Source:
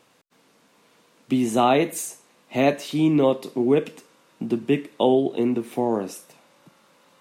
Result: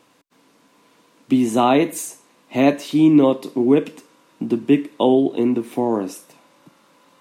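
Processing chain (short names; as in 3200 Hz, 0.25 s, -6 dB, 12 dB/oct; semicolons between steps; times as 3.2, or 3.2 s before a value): small resonant body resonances 290/1000 Hz, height 7 dB; gain +1.5 dB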